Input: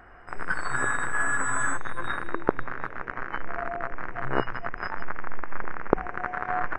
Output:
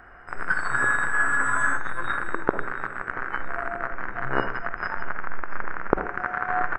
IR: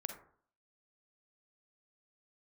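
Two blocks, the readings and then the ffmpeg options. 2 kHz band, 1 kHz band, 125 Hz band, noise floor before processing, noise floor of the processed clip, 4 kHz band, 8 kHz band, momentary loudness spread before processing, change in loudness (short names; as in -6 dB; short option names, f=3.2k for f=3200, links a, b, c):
+5.0 dB, +3.0 dB, 0.0 dB, -42 dBFS, -39 dBFS, 0.0 dB, -3.5 dB, 10 LU, +3.5 dB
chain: -filter_complex "[0:a]acrossover=split=7700[a][b];[b]acompressor=threshold=-55dB:ratio=4:attack=1:release=60[c];[a][c]amix=inputs=2:normalize=0,equalizer=f=1.5k:w=2.2:g=5,aecho=1:1:680|1360|2040:0.0841|0.0337|0.0135,asplit=2[d][e];[1:a]atrim=start_sample=2205[f];[e][f]afir=irnorm=-1:irlink=0,volume=5dB[g];[d][g]amix=inputs=2:normalize=0,volume=-7.5dB"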